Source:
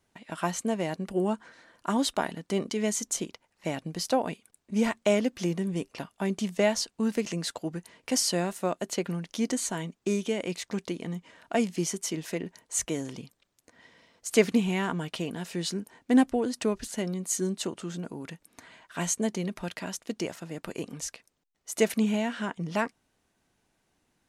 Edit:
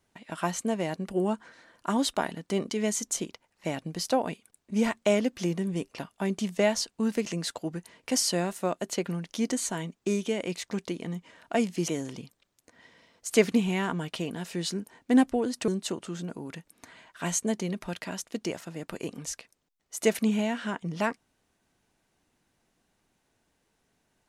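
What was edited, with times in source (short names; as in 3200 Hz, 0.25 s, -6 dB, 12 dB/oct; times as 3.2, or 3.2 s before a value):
11.88–12.88 cut
16.68–17.43 cut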